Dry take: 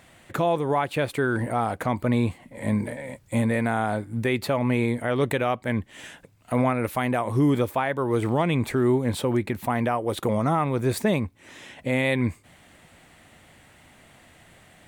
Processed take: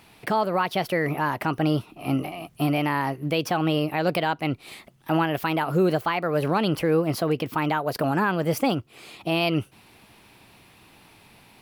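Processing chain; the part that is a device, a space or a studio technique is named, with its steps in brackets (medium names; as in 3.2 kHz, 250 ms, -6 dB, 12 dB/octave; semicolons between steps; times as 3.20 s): nightcore (tape speed +28%)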